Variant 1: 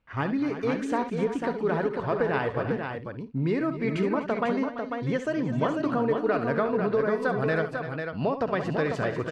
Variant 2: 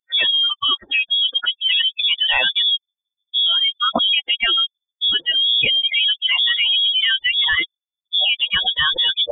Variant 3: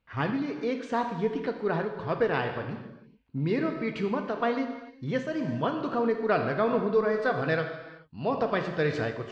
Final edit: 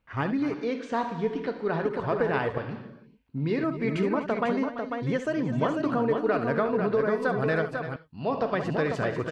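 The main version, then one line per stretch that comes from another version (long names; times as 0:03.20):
1
0:00.54–0:01.85: punch in from 3
0:02.58–0:03.64: punch in from 3
0:07.96–0:08.54: punch in from 3
not used: 2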